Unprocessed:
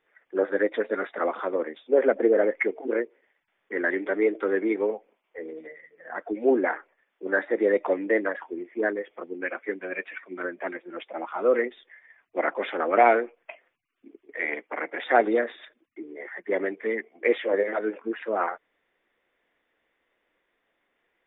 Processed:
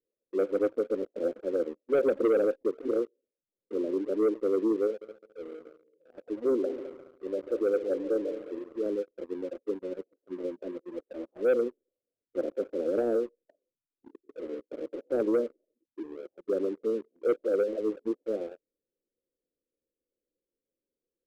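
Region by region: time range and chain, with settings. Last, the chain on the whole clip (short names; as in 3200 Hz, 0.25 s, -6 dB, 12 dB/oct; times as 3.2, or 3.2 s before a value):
4.87–8.86 low shelf 300 Hz -10 dB + multi-head echo 70 ms, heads second and third, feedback 45%, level -13 dB
whole clip: Chebyshev low-pass 540 Hz, order 5; sample leveller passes 2; gain -7 dB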